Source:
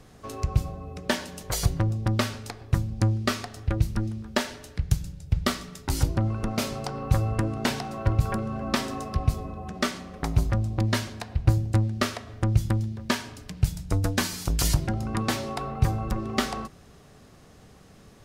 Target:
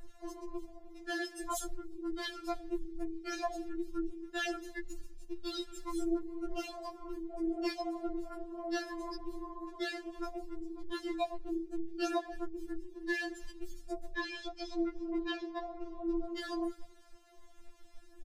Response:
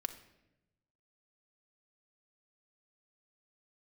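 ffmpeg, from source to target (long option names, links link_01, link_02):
-filter_complex "[0:a]acrossover=split=280|3000[link_01][link_02][link_03];[link_02]acompressor=threshold=-33dB:ratio=1.5[link_04];[link_01][link_04][link_03]amix=inputs=3:normalize=0,aecho=1:1:311|622:0.0708|0.0198,flanger=delay=5.9:depth=7.6:regen=14:speed=0.66:shape=sinusoidal,asoftclip=type=tanh:threshold=-26dB,alimiter=level_in=10.5dB:limit=-24dB:level=0:latency=1:release=22,volume=-10.5dB,asettb=1/sr,asplit=3[link_05][link_06][link_07];[link_05]atrim=end=14.144[link_08];[link_06]atrim=start=14.14:end=16.24,asetpts=PTS-STARTPTS,afade=type=in:duration=0.004:curve=qsin,afade=type=out:start_time=2.096:duration=0.004:curve=qsin,lowpass=frequency=5600:width=0.5412,lowpass=frequency=5600:width=1.3066[link_09];[link_07]atrim=start=16.236[link_10];[link_08][link_09]acrossfade=duration=0.004:curve1=hsin:curve2=qsin[link_11];[link_11][link_10]acrossfade=duration=0.004:curve1=qsin:curve2=hsin,afftdn=noise_reduction=20:noise_floor=-43,acompressor=threshold=-41dB:ratio=8,adynamicequalizer=threshold=0.00178:dfrequency=270:dqfactor=2.9:tfrequency=270:tqfactor=2.9:attack=5:release=100:ratio=0.375:range=3:mode=cutabove:tftype=bell,afftfilt=real='re*4*eq(mod(b,16),0)':imag='im*4*eq(mod(b,16),0)':win_size=2048:overlap=0.75,volume=16.5dB"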